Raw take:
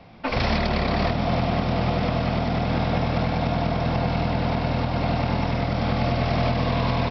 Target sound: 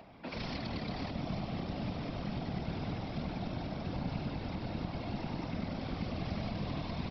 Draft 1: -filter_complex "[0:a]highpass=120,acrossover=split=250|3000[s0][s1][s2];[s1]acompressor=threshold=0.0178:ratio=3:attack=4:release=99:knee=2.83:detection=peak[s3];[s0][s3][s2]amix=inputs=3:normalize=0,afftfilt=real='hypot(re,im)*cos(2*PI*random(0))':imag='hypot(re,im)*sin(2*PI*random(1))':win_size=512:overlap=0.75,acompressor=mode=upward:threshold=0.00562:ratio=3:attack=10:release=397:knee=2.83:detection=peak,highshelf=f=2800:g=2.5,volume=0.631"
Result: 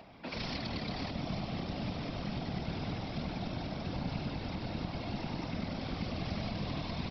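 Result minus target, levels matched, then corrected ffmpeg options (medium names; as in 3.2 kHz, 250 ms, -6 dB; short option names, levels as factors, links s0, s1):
4 kHz band +3.5 dB
-filter_complex "[0:a]highpass=120,acrossover=split=250|3000[s0][s1][s2];[s1]acompressor=threshold=0.0178:ratio=3:attack=4:release=99:knee=2.83:detection=peak[s3];[s0][s3][s2]amix=inputs=3:normalize=0,afftfilt=real='hypot(re,im)*cos(2*PI*random(0))':imag='hypot(re,im)*sin(2*PI*random(1))':win_size=512:overlap=0.75,acompressor=mode=upward:threshold=0.00562:ratio=3:attack=10:release=397:knee=2.83:detection=peak,highshelf=f=2800:g=-3.5,volume=0.631"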